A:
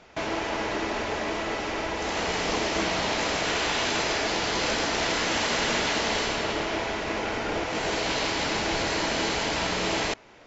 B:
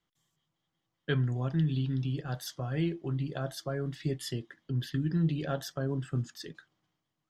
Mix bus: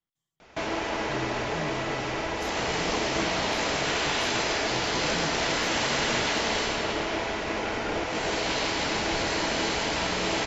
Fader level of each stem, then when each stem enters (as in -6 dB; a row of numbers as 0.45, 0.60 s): -0.5, -10.5 dB; 0.40, 0.00 s